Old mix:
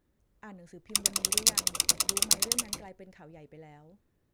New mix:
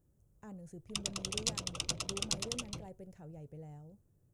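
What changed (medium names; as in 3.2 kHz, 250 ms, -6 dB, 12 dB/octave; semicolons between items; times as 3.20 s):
background: add resonant low-pass 3.3 kHz, resonance Q 2.6; master: add graphic EQ 125/250/1000/2000/4000/8000 Hz +10/-5/-5/-12/-11/+5 dB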